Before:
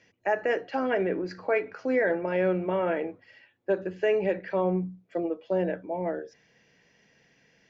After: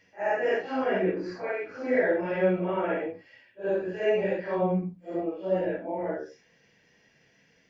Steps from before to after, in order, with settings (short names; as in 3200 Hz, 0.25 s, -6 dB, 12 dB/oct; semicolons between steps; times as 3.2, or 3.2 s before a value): phase scrambler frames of 0.2 s; 1.1–1.8 compressor, threshold -28 dBFS, peak gain reduction 6.5 dB